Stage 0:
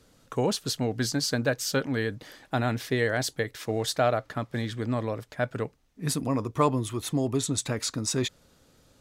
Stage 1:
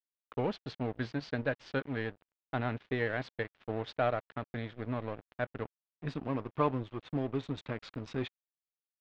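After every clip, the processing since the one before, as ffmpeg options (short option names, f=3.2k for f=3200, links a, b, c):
-af "acrusher=bits=8:mode=log:mix=0:aa=0.000001,aeval=exprs='sgn(val(0))*max(abs(val(0))-0.0158,0)':c=same,lowpass=f=3.3k:w=0.5412,lowpass=f=3.3k:w=1.3066,volume=-5dB"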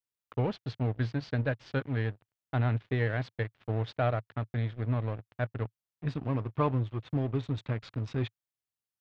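-af "equalizer=f=110:t=o:w=0.84:g=12"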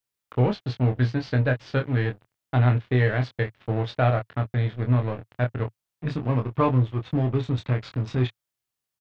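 -filter_complex "[0:a]asplit=2[a][b];[b]adelay=24,volume=-5dB[c];[a][c]amix=inputs=2:normalize=0,volume=6dB"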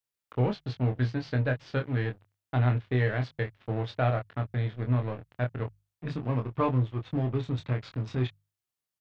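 -af "bandreject=f=50:t=h:w=6,bandreject=f=100:t=h:w=6,bandreject=f=150:t=h:w=6,volume=-5dB"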